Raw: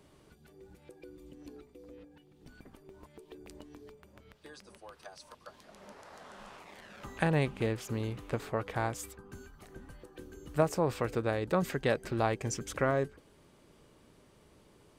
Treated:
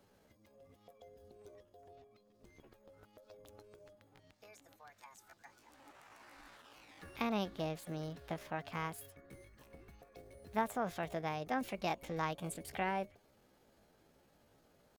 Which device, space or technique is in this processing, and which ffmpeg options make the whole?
chipmunk voice: -af "asetrate=62367,aresample=44100,atempo=0.707107,volume=-7.5dB"

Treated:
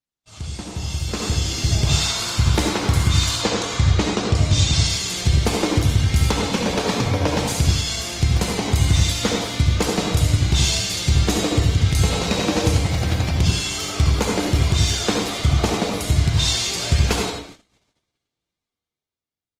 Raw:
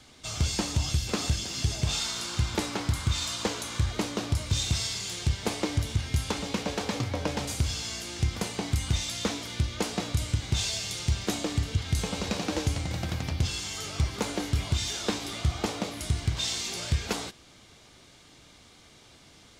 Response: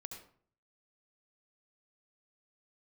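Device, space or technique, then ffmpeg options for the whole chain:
speakerphone in a meeting room: -filter_complex "[0:a]asettb=1/sr,asplit=3[link_01][link_02][link_03];[link_01]atrim=end=3.414[link_04];[link_02]atrim=start=3.41:end=4.89,asetpts=PTS-STARTPTS,afade=type=in:duration=0.004:curve=qsin,afade=type=out:start_time=1.476:duration=0.004:curve=qsin,lowpass=frequency=7800:width=0.5412,lowpass=frequency=7800:width=1.3066[link_05];[link_03]atrim=start=4.886[link_06];[link_04][link_05]acrossfade=duration=0.004:curve1=hsin:curve2=qsin[link_07];[link_07][link_06]acrossfade=duration=0.004:curve1=qsin:curve2=hsin[link_08];[1:a]atrim=start_sample=2205[link_09];[link_08][link_09]afir=irnorm=-1:irlink=0,asplit=2[link_10][link_11];[link_11]adelay=100,highpass=300,lowpass=3400,asoftclip=type=hard:threshold=-27dB,volume=-10dB[link_12];[link_10][link_12]amix=inputs=2:normalize=0,dynaudnorm=framelen=120:gausssize=21:maxgain=14dB,agate=range=-38dB:threshold=-40dB:ratio=16:detection=peak" -ar 48000 -c:a libopus -b:a 24k

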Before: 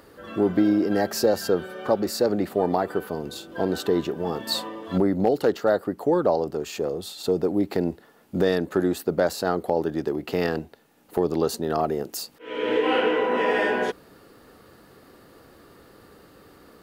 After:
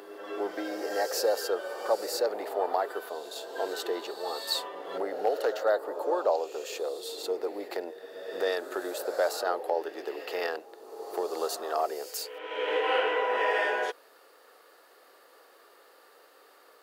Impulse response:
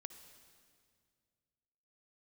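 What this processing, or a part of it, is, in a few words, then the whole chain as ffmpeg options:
ghost voice: -filter_complex "[0:a]areverse[link_01];[1:a]atrim=start_sample=2205[link_02];[link_01][link_02]afir=irnorm=-1:irlink=0,areverse,highpass=frequency=480:width=0.5412,highpass=frequency=480:width=1.3066,volume=2.5dB"

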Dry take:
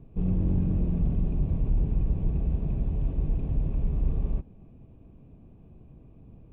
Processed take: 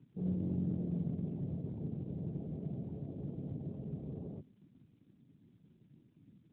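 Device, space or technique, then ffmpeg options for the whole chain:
mobile call with aggressive noise cancelling: -af "highpass=140,afftdn=noise_reduction=19:noise_floor=-47,volume=-4.5dB" -ar 8000 -c:a libopencore_amrnb -b:a 12200

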